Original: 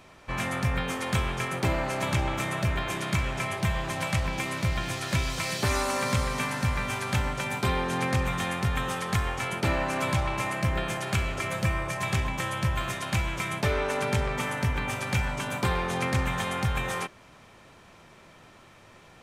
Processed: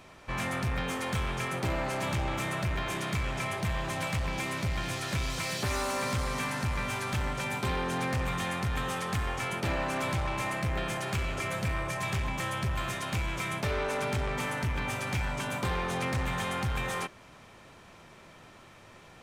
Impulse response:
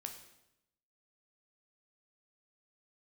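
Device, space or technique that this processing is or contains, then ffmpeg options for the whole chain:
saturation between pre-emphasis and de-emphasis: -af "highshelf=f=6.4k:g=11,asoftclip=type=tanh:threshold=-25.5dB,highshelf=f=6.4k:g=-11"

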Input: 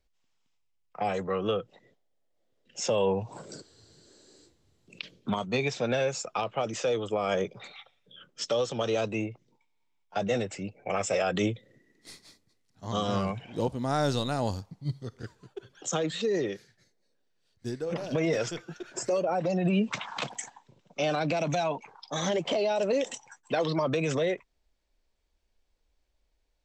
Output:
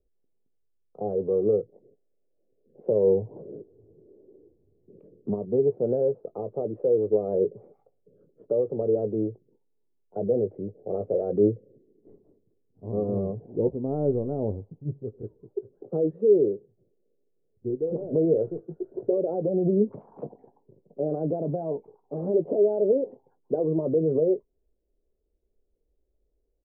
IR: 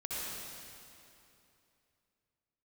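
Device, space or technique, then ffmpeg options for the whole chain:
under water: -filter_complex "[0:a]asettb=1/sr,asplit=3[a][b][c];[a]atrim=end=16.454[d];[b]atrim=start=16.45:end=17.7,asetpts=PTS-STARTPTS,afade=t=in:d=0.004:c=qsin,afade=t=out:st=1.246:d=0.004:c=qsin,lowpass=1.1k[e];[c]atrim=start=17.696[f];[d][e]acrossfade=d=0.004:c1=hsin:c2=qsin[g];[g][f]acrossfade=d=0.004:c1=qsin:c2=hsin,lowpass=f=570:w=0.5412,lowpass=f=570:w=1.3066,equalizer=f=410:t=o:w=0.56:g=11,asplit=2[h][i];[i]adelay=19,volume=-12dB[j];[h][j]amix=inputs=2:normalize=0"

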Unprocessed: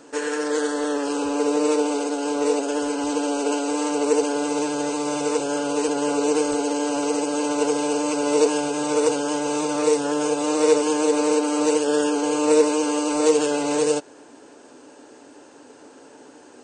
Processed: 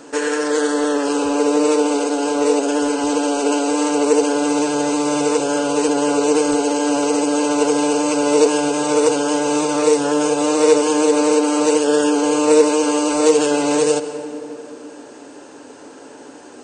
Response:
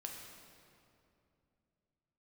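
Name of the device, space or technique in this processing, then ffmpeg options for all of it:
ducked reverb: -filter_complex "[0:a]asplit=3[a][b][c];[1:a]atrim=start_sample=2205[d];[b][d]afir=irnorm=-1:irlink=0[e];[c]apad=whole_len=733779[f];[e][f]sidechaincompress=threshold=-27dB:ratio=8:attack=16:release=118,volume=-1.5dB[g];[a][g]amix=inputs=2:normalize=0,volume=3.5dB"

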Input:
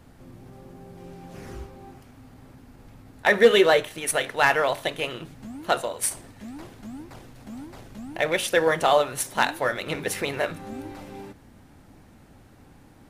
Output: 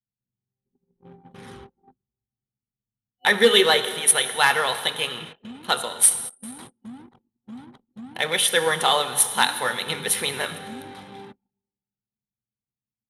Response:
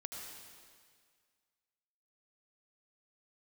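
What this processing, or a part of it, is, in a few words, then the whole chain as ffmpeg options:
keyed gated reverb: -filter_complex "[0:a]highpass=160,agate=range=-20dB:threshold=-43dB:ratio=16:detection=peak,asplit=3[a][b][c];[1:a]atrim=start_sample=2205[d];[b][d]afir=irnorm=-1:irlink=0[e];[c]apad=whole_len=577447[f];[e][f]sidechaingate=range=-6dB:threshold=-46dB:ratio=16:detection=peak,volume=-4.5dB[g];[a][g]amix=inputs=2:normalize=0,anlmdn=0.1,superequalizer=6b=0.355:7b=0.708:8b=0.355:13b=2.51:16b=3.16,volume=-1dB"

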